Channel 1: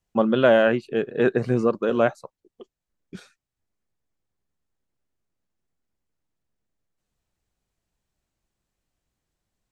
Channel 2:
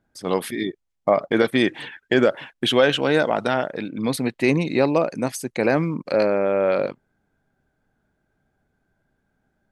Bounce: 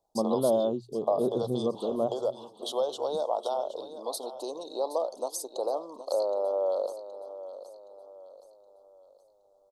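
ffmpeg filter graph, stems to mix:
ffmpeg -i stem1.wav -i stem2.wav -filter_complex "[0:a]volume=-8dB,asplit=2[link_01][link_02];[link_02]volume=-19.5dB[link_03];[1:a]acompressor=threshold=-26dB:ratio=2.5,highpass=frequency=480:width=0.5412,highpass=frequency=480:width=1.3066,equalizer=frequency=710:width=1.5:gain=2,volume=-0.5dB,asplit=2[link_04][link_05];[link_05]volume=-13.5dB[link_06];[link_03][link_06]amix=inputs=2:normalize=0,aecho=0:1:770|1540|2310|3080|3850|4620:1|0.41|0.168|0.0689|0.0283|0.0116[link_07];[link_01][link_04][link_07]amix=inputs=3:normalize=0,asuperstop=centerf=2000:order=8:qfactor=0.74,bandreject=frequency=60:width_type=h:width=6,bandreject=frequency=120:width_type=h:width=6" out.wav

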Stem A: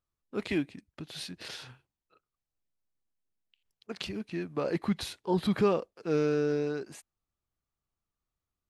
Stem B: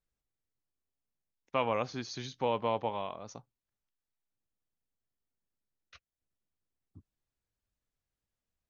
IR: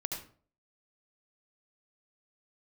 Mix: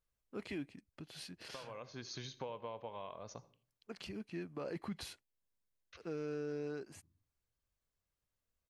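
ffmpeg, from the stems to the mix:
-filter_complex "[0:a]bandreject=frequency=3700:width=10,alimiter=level_in=1.5dB:limit=-24dB:level=0:latency=1:release=27,volume=-1.5dB,volume=-8dB,asplit=3[link_01][link_02][link_03];[link_01]atrim=end=5.23,asetpts=PTS-STARTPTS,afade=type=out:start_time=5.226:duration=0.004:curve=hsin[link_04];[link_02]atrim=start=5.23:end=5.94,asetpts=PTS-STARTPTS,volume=0[link_05];[link_03]atrim=start=5.94,asetpts=PTS-STARTPTS,afade=type=in:duration=0.004:curve=hsin[link_06];[link_04][link_05][link_06]concat=n=3:v=0:a=1,asplit=2[link_07][link_08];[1:a]aecho=1:1:1.9:0.3,acompressor=threshold=-39dB:ratio=8,volume=-3.5dB,asplit=2[link_09][link_10];[link_10]volume=-15dB[link_11];[link_08]apad=whole_len=383521[link_12];[link_09][link_12]sidechaincompress=threshold=-55dB:ratio=8:attack=16:release=405[link_13];[2:a]atrim=start_sample=2205[link_14];[link_11][link_14]afir=irnorm=-1:irlink=0[link_15];[link_07][link_13][link_15]amix=inputs=3:normalize=0"

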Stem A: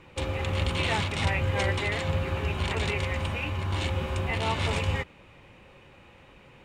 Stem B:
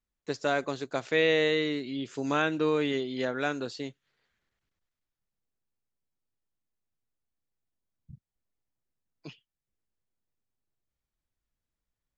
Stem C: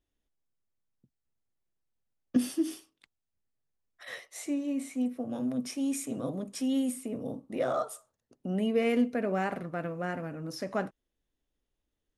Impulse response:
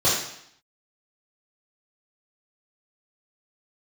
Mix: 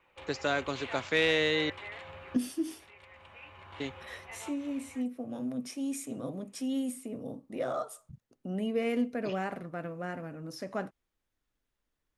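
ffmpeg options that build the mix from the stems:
-filter_complex "[0:a]acrossover=split=500 3400:gain=0.178 1 0.224[link_01][link_02][link_03];[link_01][link_02][link_03]amix=inputs=3:normalize=0,volume=-11.5dB[link_04];[1:a]equalizer=frequency=1400:width=0.43:gain=8,acrossover=split=320|3000[link_05][link_06][link_07];[link_06]acompressor=threshold=-41dB:ratio=1.5[link_08];[link_05][link_08][link_07]amix=inputs=3:normalize=0,volume=-1.5dB,asplit=3[link_09][link_10][link_11];[link_09]atrim=end=1.7,asetpts=PTS-STARTPTS,afade=type=out:start_time=1.696:duration=0.004:curve=hsin[link_12];[link_10]atrim=start=1.7:end=3.8,asetpts=PTS-STARTPTS,volume=0[link_13];[link_11]atrim=start=3.8,asetpts=PTS-STARTPTS,afade=type=in:duration=0.004:curve=hsin[link_14];[link_12][link_13][link_14]concat=n=3:v=0:a=1[link_15];[2:a]volume=-3.5dB,asplit=2[link_16][link_17];[link_17]apad=whole_len=292952[link_18];[link_04][link_18]sidechaincompress=threshold=-41dB:ratio=12:attack=9.5:release=1000[link_19];[link_19][link_15][link_16]amix=inputs=3:normalize=0,aeval=exprs='0.211*(cos(1*acos(clip(val(0)/0.211,-1,1)))-cos(1*PI/2))+0.0473*(cos(2*acos(clip(val(0)/0.211,-1,1)))-cos(2*PI/2))+0.0133*(cos(4*acos(clip(val(0)/0.211,-1,1)))-cos(4*PI/2))':channel_layout=same"

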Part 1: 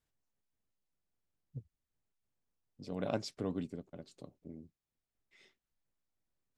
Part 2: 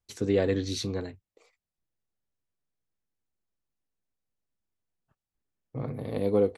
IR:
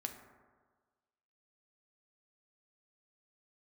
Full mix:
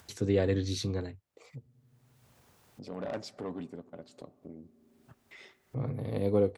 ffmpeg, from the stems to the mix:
-filter_complex "[0:a]equalizer=frequency=900:width=0.48:gain=8,asoftclip=type=tanh:threshold=-27.5dB,volume=-4dB,asplit=2[link_01][link_02];[link_02]volume=-10dB[link_03];[1:a]equalizer=frequency=110:width_type=o:width=1:gain=6,volume=-3dB[link_04];[2:a]atrim=start_sample=2205[link_05];[link_03][link_05]afir=irnorm=-1:irlink=0[link_06];[link_01][link_04][link_06]amix=inputs=3:normalize=0,highpass=47,acompressor=mode=upward:threshold=-41dB:ratio=2.5"

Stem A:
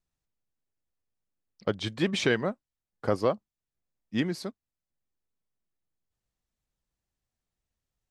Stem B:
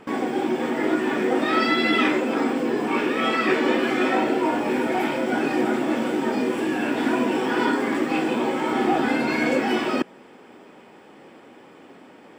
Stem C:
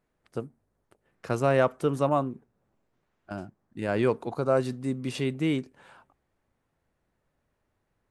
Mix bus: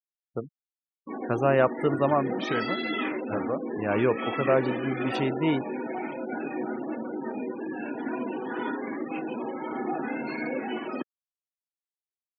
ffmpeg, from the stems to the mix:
ffmpeg -i stem1.wav -i stem2.wav -i stem3.wav -filter_complex "[0:a]adelay=250,volume=-5.5dB[link_01];[1:a]adelay=1000,volume=-9.5dB[link_02];[2:a]lowshelf=frequency=240:gain=-3.5,volume=1.5dB,asplit=2[link_03][link_04];[link_04]apad=whole_len=368648[link_05];[link_01][link_05]sidechaincompress=threshold=-30dB:ratio=10:attack=26:release=289[link_06];[link_06][link_02][link_03]amix=inputs=3:normalize=0,afftfilt=real='re*gte(hypot(re,im),0.0224)':imag='im*gte(hypot(re,im),0.0224)':win_size=1024:overlap=0.75" out.wav

